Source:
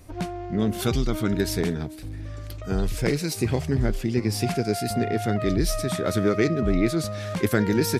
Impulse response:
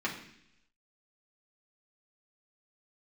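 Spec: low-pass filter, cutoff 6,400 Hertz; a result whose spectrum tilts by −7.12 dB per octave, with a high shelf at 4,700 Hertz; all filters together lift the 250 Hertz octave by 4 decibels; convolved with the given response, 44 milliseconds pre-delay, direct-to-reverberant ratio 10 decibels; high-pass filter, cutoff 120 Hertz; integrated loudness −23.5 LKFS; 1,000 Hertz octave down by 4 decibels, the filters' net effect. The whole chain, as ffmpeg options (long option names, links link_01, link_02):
-filter_complex "[0:a]highpass=120,lowpass=6400,equalizer=frequency=250:width_type=o:gain=6,equalizer=frequency=1000:width_type=o:gain=-7,highshelf=frequency=4700:gain=-6,asplit=2[link_01][link_02];[1:a]atrim=start_sample=2205,adelay=44[link_03];[link_02][link_03]afir=irnorm=-1:irlink=0,volume=-17dB[link_04];[link_01][link_04]amix=inputs=2:normalize=0,volume=-0.5dB"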